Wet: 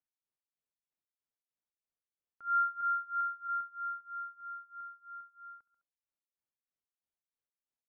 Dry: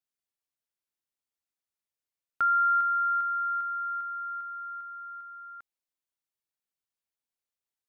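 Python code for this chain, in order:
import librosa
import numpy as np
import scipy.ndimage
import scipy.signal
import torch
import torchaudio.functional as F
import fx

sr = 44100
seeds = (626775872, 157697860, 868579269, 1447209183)

y = fx.lowpass(x, sr, hz=1000.0, slope=6)
y = fx.echo_feedback(y, sr, ms=69, feedback_pct=35, wet_db=-14.5)
y = y * (1.0 - 0.94 / 2.0 + 0.94 / 2.0 * np.cos(2.0 * np.pi * 3.1 * (np.arange(len(y)) / sr)))
y = fx.steep_highpass(y, sr, hz=620.0, slope=36, at=(2.81, 3.47), fade=0.02)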